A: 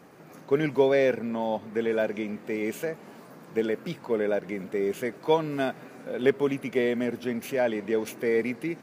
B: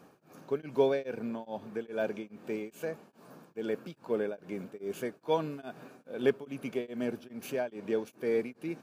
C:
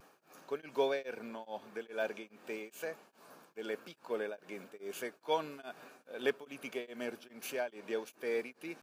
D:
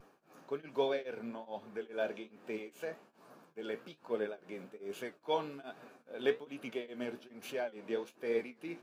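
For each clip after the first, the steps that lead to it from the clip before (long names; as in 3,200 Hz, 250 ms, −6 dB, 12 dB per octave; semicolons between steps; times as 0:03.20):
notch filter 2,000 Hz, Q 5.2; tremolo along a rectified sine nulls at 2.4 Hz; level −4 dB
high-pass filter 1,000 Hz 6 dB per octave; pitch vibrato 0.51 Hz 21 cents; level +2 dB
dynamic equaliser 3,500 Hz, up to +5 dB, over −58 dBFS, Q 1.8; flanger 1.2 Hz, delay 8 ms, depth 10 ms, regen +58%; spectral tilt −2 dB per octave; level +2.5 dB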